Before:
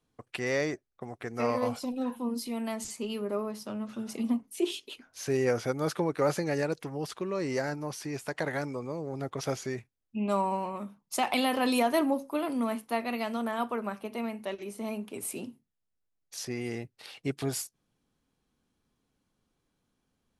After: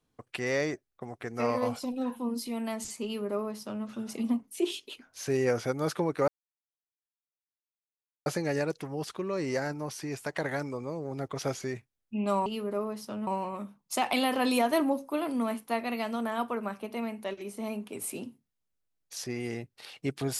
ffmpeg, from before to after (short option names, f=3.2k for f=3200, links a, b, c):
-filter_complex "[0:a]asplit=4[a][b][c][d];[a]atrim=end=6.28,asetpts=PTS-STARTPTS,afade=t=out:st=6.276:d=0.004:c=hsin,apad=pad_dur=1.98[e];[b]atrim=start=6.28:end=10.482,asetpts=PTS-STARTPTS,afade=t=in:d=0.004:c=hsin[f];[c]atrim=start=3.038:end=3.852[g];[d]atrim=start=10.478[h];[e][f]concat=n=2:v=0:a=1[i];[i][g]acrossfade=d=0.004:c1=hsin:c2=hsin[j];[j][h]acrossfade=d=0.004:c1=hsin:c2=hsin"